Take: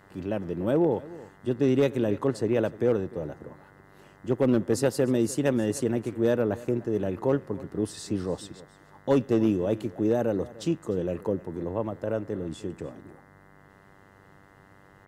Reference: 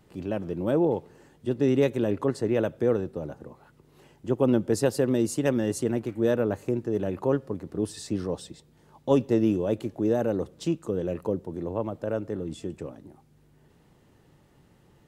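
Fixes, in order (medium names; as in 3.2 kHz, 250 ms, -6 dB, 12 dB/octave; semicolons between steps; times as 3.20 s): clip repair -14.5 dBFS; de-hum 97.6 Hz, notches 21; inverse comb 300 ms -19.5 dB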